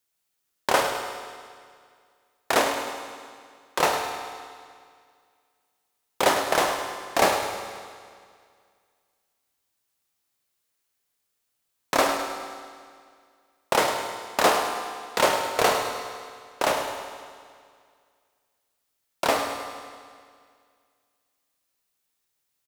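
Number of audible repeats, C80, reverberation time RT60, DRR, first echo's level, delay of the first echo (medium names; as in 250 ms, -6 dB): 3, 5.0 dB, 2.1 s, 3.5 dB, -10.0 dB, 104 ms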